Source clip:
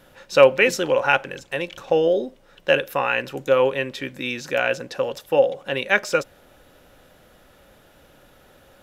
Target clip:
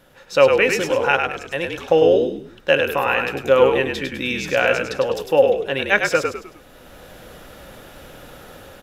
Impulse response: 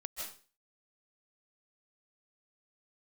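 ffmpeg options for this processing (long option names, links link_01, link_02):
-filter_complex "[0:a]asplit=5[link_01][link_02][link_03][link_04][link_05];[link_02]adelay=102,afreqshift=-47,volume=-5dB[link_06];[link_03]adelay=204,afreqshift=-94,volume=-14.4dB[link_07];[link_04]adelay=306,afreqshift=-141,volume=-23.7dB[link_08];[link_05]adelay=408,afreqshift=-188,volume=-33.1dB[link_09];[link_01][link_06][link_07][link_08][link_09]amix=inputs=5:normalize=0,dynaudnorm=framelen=130:gausssize=9:maxgain=11.5dB,volume=-1dB"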